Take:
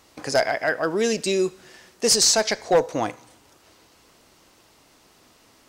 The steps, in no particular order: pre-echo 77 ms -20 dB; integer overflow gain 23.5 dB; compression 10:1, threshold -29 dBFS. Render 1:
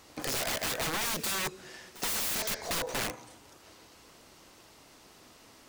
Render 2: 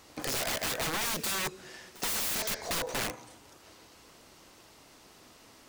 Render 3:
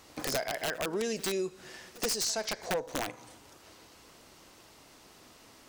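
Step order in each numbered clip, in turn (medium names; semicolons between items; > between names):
integer overflow > pre-echo > compression; integer overflow > compression > pre-echo; compression > integer overflow > pre-echo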